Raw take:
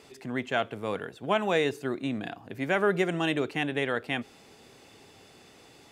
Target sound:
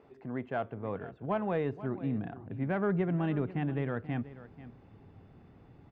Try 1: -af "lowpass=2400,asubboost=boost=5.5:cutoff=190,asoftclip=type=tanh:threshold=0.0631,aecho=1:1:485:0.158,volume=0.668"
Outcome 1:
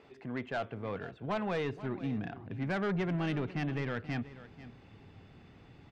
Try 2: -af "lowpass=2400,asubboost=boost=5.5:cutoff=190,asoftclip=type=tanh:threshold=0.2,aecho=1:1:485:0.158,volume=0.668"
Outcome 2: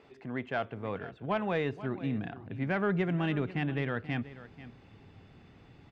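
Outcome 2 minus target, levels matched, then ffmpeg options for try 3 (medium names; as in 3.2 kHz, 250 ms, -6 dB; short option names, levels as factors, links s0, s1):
2 kHz band +5.5 dB
-af "lowpass=1200,asubboost=boost=5.5:cutoff=190,asoftclip=type=tanh:threshold=0.2,aecho=1:1:485:0.158,volume=0.668"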